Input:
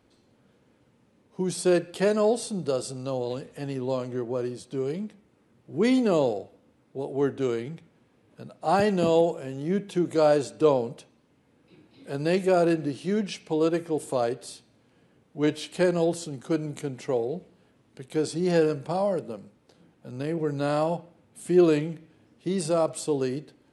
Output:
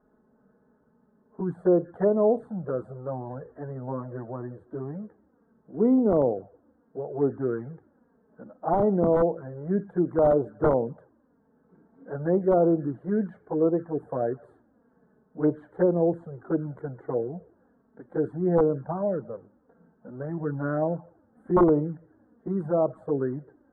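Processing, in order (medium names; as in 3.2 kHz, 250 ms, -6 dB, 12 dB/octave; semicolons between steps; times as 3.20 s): integer overflow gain 12.5 dB; touch-sensitive flanger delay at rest 4.8 ms, full sweep at -19.5 dBFS; elliptic low-pass 1.6 kHz, stop band 40 dB; trim +2.5 dB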